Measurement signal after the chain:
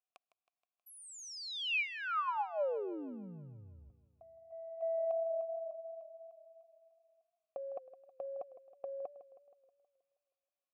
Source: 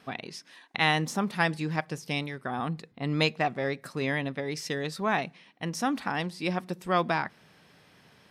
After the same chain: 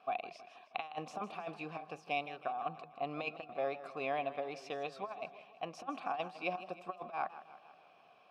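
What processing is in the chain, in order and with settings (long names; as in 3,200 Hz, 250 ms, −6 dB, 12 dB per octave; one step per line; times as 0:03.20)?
formant filter a
compressor whose output falls as the input rises −40 dBFS, ratio −0.5
feedback echo with a swinging delay time 159 ms, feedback 55%, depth 102 cents, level −14.5 dB
level +3 dB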